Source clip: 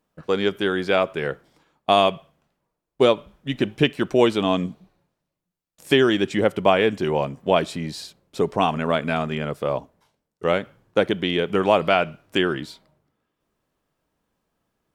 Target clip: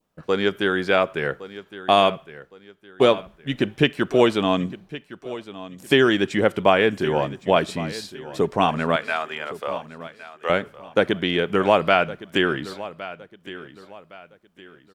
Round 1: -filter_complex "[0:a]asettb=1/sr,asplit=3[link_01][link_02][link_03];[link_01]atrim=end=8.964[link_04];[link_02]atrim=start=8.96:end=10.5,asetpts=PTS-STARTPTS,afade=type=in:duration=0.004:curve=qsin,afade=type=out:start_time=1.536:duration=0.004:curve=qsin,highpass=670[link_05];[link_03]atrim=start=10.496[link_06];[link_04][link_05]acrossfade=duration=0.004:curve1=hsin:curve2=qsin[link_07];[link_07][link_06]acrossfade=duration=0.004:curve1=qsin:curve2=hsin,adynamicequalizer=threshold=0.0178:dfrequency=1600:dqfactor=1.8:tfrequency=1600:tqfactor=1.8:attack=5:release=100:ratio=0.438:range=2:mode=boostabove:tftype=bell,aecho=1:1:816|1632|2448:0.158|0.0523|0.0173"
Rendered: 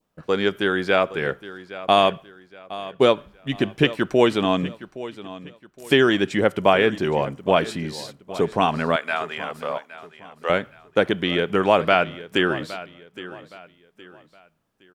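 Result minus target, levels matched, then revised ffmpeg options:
echo 297 ms early
-filter_complex "[0:a]asettb=1/sr,asplit=3[link_01][link_02][link_03];[link_01]atrim=end=8.964[link_04];[link_02]atrim=start=8.96:end=10.5,asetpts=PTS-STARTPTS,afade=type=in:duration=0.004:curve=qsin,afade=type=out:start_time=1.536:duration=0.004:curve=qsin,highpass=670[link_05];[link_03]atrim=start=10.496[link_06];[link_04][link_05]acrossfade=duration=0.004:curve1=hsin:curve2=qsin[link_07];[link_07][link_06]acrossfade=duration=0.004:curve1=qsin:curve2=hsin,adynamicequalizer=threshold=0.0178:dfrequency=1600:dqfactor=1.8:tfrequency=1600:tqfactor=1.8:attack=5:release=100:ratio=0.438:range=2:mode=boostabove:tftype=bell,aecho=1:1:1113|2226|3339:0.158|0.0523|0.0173"

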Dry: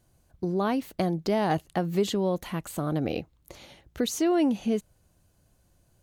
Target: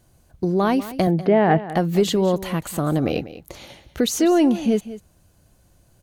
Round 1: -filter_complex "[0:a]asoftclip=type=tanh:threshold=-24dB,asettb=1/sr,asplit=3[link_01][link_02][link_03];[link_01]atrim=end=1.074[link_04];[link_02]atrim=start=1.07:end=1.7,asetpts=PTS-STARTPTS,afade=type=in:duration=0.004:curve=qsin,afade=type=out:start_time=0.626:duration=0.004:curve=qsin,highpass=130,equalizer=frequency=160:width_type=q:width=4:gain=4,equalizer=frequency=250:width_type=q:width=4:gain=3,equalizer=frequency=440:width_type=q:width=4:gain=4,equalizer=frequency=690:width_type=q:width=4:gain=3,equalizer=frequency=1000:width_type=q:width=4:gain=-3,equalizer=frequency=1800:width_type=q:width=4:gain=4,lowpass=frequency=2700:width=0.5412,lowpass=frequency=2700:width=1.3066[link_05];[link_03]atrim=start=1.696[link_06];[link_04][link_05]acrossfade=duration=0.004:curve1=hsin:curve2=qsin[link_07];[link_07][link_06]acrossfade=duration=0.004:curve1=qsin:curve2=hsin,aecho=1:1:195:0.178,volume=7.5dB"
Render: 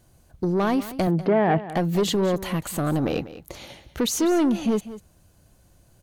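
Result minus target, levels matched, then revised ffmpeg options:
soft clipping: distortion +16 dB
-filter_complex "[0:a]asoftclip=type=tanh:threshold=-12.5dB,asettb=1/sr,asplit=3[link_01][link_02][link_03];[link_01]atrim=end=1.074[link_04];[link_02]atrim=start=1.07:end=1.7,asetpts=PTS-STARTPTS,afade=type=in:duration=0.004:curve=qsin,afade=type=out:start_time=0.626:duration=0.004:curve=qsin,highpass=130,equalizer=frequency=160:width_type=q:width=4:gain=4,equalizer=frequency=250:width_type=q:width=4:gain=3,equalizer=frequency=440:width_type=q:width=4:gain=4,equalizer=frequency=690:width_type=q:width=4:gain=3,equalizer=frequency=1000:width_type=q:width=4:gain=-3,equalizer=frequency=1800:width_type=q:width=4:gain=4,lowpass=frequency=2700:width=0.5412,lowpass=frequency=2700:width=1.3066[link_05];[link_03]atrim=start=1.696[link_06];[link_04][link_05]acrossfade=duration=0.004:curve1=hsin:curve2=qsin[link_07];[link_07][link_06]acrossfade=duration=0.004:curve1=qsin:curve2=hsin,aecho=1:1:195:0.178,volume=7.5dB"

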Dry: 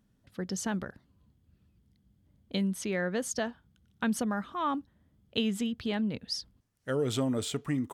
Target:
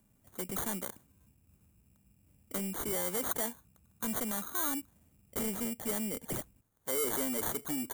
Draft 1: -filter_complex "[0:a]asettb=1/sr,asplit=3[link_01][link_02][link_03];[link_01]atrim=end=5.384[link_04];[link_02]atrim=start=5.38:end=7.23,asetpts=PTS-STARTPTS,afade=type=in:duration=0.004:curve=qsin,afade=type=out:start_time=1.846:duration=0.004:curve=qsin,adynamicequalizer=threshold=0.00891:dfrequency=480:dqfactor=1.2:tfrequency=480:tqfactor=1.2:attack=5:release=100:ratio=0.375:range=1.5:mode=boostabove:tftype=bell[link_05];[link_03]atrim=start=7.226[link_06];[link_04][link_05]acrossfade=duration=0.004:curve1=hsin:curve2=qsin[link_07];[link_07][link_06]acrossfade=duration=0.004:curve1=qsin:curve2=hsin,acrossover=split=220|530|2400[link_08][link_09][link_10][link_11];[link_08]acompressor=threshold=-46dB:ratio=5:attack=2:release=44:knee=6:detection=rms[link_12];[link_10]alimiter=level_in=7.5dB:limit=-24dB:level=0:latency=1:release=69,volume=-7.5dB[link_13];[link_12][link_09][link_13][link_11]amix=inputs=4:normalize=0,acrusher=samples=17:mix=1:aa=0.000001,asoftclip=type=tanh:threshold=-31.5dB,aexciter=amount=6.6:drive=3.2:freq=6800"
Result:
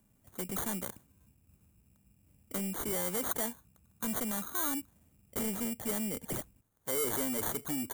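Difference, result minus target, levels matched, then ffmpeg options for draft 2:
downward compressor: peak gain reduction −9 dB
-filter_complex "[0:a]asettb=1/sr,asplit=3[link_01][link_02][link_03];[link_01]atrim=end=5.384[link_04];[link_02]atrim=start=5.38:end=7.23,asetpts=PTS-STARTPTS,afade=type=in:duration=0.004:curve=qsin,afade=type=out:start_time=1.846:duration=0.004:curve=qsin,adynamicequalizer=threshold=0.00891:dfrequency=480:dqfactor=1.2:tfrequency=480:tqfactor=1.2:attack=5:release=100:ratio=0.375:range=1.5:mode=boostabove:tftype=bell[link_05];[link_03]atrim=start=7.226[link_06];[link_04][link_05]acrossfade=duration=0.004:curve1=hsin:curve2=qsin[link_07];[link_07][link_06]acrossfade=duration=0.004:curve1=qsin:curve2=hsin,acrossover=split=220|530|2400[link_08][link_09][link_10][link_11];[link_08]acompressor=threshold=-57.5dB:ratio=5:attack=2:release=44:knee=6:detection=rms[link_12];[link_10]alimiter=level_in=7.5dB:limit=-24dB:level=0:latency=1:release=69,volume=-7.5dB[link_13];[link_12][link_09][link_13][link_11]amix=inputs=4:normalize=0,acrusher=samples=17:mix=1:aa=0.000001,asoftclip=type=tanh:threshold=-31.5dB,aexciter=amount=6.6:drive=3.2:freq=6800"

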